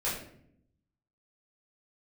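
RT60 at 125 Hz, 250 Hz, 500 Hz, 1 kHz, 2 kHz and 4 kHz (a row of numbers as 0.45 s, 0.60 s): 1.2 s, 1.1 s, 0.75 s, 0.55 s, 0.55 s, 0.45 s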